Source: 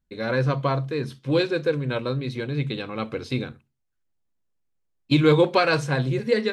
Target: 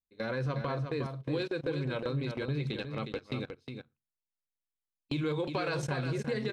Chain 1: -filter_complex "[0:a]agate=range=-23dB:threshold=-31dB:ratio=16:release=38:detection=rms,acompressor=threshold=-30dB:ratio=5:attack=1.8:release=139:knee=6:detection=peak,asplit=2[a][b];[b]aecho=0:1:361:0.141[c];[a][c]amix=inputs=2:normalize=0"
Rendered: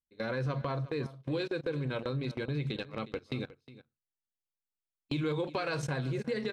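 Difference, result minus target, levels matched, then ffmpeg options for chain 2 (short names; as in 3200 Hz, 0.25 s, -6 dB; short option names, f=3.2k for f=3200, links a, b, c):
echo-to-direct -10 dB
-filter_complex "[0:a]agate=range=-23dB:threshold=-31dB:ratio=16:release=38:detection=rms,acompressor=threshold=-30dB:ratio=5:attack=1.8:release=139:knee=6:detection=peak,asplit=2[a][b];[b]aecho=0:1:361:0.447[c];[a][c]amix=inputs=2:normalize=0"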